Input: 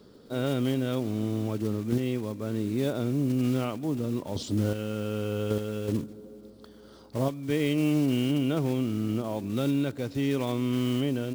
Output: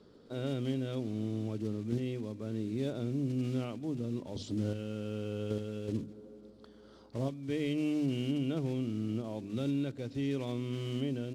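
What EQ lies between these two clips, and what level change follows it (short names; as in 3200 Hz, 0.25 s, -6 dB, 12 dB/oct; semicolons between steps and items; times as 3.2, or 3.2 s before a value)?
notches 50/100/150/200/250 Hz; dynamic EQ 1100 Hz, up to -7 dB, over -45 dBFS, Q 0.74; air absorption 60 m; -5.0 dB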